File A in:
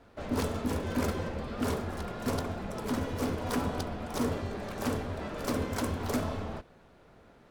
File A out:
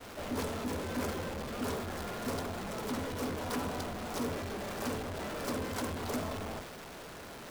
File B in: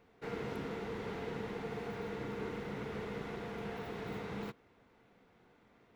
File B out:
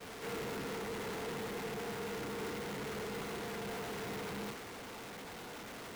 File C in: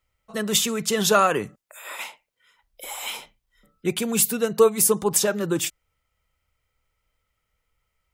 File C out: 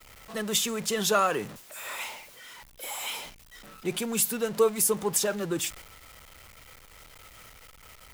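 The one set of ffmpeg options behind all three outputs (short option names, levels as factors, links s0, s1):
-af "aeval=exprs='val(0)+0.5*0.0299*sgn(val(0))':c=same,lowshelf=f=170:g=-5.5,agate=range=0.0224:threshold=0.02:ratio=3:detection=peak,volume=0.501"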